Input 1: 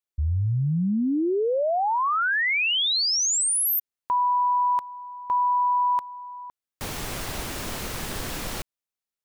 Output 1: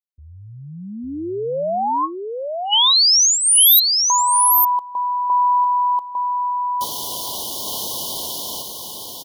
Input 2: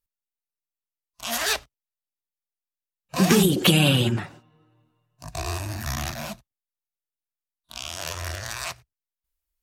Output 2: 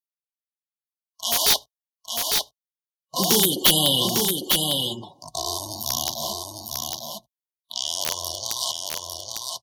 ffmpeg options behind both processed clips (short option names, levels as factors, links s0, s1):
-filter_complex "[0:a]dynaudnorm=f=170:g=13:m=1.68,afftfilt=real='re*(1-between(b*sr/4096,1100,2900))':imag='im*(1-between(b*sr/4096,1100,2900))':win_size=4096:overlap=0.75,afftdn=nr=16:nf=-44,highpass=f=590:p=1,highshelf=f=2800:g=8,aeval=exprs='(mod(2*val(0)+1,2)-1)/2':c=same,equalizer=f=7800:w=4.5:g=-10,asplit=2[s0][s1];[s1]aecho=0:1:852:0.631[s2];[s0][s2]amix=inputs=2:normalize=0"